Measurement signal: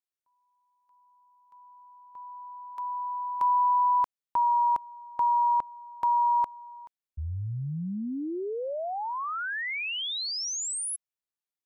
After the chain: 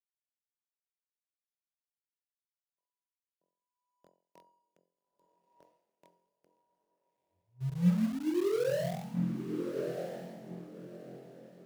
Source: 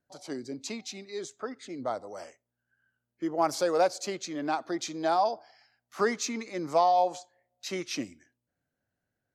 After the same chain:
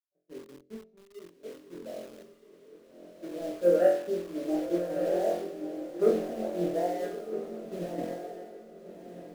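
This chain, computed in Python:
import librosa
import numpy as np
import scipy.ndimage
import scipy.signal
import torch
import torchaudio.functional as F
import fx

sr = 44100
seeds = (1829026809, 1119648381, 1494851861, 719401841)

p1 = scipy.signal.sosfilt(scipy.signal.ellip(3, 1.0, 40, [160.0, 600.0], 'bandpass', fs=sr, output='sos'), x)
p2 = fx.peak_eq(p1, sr, hz=260.0, db=-10.5, octaves=0.29)
p3 = fx.hum_notches(p2, sr, base_hz=50, count=5)
p4 = fx.leveller(p3, sr, passes=1)
p5 = p4 + fx.room_flutter(p4, sr, wall_m=3.9, rt60_s=0.62, dry=0)
p6 = fx.rotary(p5, sr, hz=0.65)
p7 = fx.quant_dither(p6, sr, seeds[0], bits=6, dither='none')
p8 = p6 + (p7 * librosa.db_to_amplitude(-7.0))
p9 = fx.echo_diffused(p8, sr, ms=1274, feedback_pct=51, wet_db=-3)
p10 = fx.band_widen(p9, sr, depth_pct=100)
y = p10 * librosa.db_to_amplitude(-6.0)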